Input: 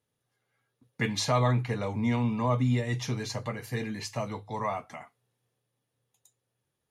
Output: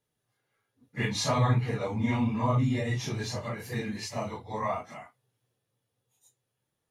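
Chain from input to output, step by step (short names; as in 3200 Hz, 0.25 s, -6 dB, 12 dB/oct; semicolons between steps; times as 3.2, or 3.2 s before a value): phase scrambler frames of 0.1 s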